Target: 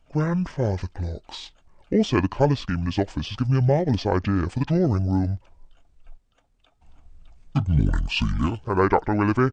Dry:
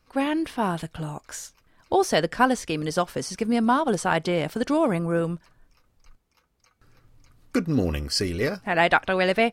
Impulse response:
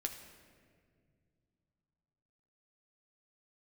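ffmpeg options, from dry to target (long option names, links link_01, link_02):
-af "asetrate=24750,aresample=44100,atempo=1.7818,lowshelf=frequency=79:gain=10.5"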